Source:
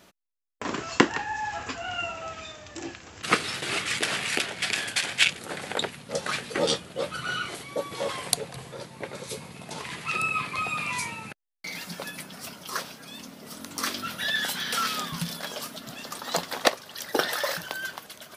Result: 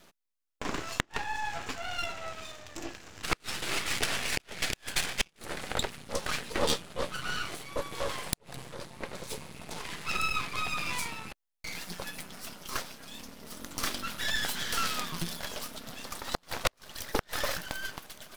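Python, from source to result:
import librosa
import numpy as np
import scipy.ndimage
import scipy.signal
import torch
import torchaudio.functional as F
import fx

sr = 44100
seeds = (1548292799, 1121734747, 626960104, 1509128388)

y = np.maximum(x, 0.0)
y = fx.gate_flip(y, sr, shuts_db=-10.0, range_db=-35)
y = F.gain(torch.from_numpy(y), 1.0).numpy()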